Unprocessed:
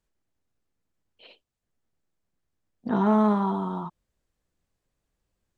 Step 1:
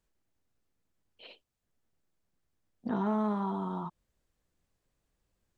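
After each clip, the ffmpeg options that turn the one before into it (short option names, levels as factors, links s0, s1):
-af "acompressor=threshold=0.0178:ratio=2"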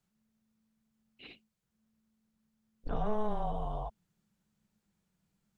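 -af "afreqshift=-220"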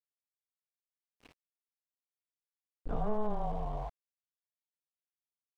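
-af "aeval=exprs='val(0)*gte(abs(val(0)),0.00531)':c=same,lowpass=f=1400:p=1"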